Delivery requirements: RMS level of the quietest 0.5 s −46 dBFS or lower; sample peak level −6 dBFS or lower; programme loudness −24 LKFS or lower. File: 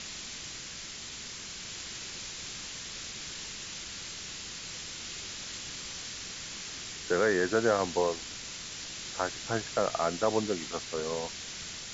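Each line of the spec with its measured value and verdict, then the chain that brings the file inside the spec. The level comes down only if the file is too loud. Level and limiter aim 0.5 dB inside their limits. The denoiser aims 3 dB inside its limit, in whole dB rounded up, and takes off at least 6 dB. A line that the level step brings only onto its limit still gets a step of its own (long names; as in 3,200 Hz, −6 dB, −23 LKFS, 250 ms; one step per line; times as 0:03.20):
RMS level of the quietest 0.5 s −42 dBFS: out of spec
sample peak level −13.0 dBFS: in spec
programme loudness −34.0 LKFS: in spec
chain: broadband denoise 7 dB, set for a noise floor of −42 dBFS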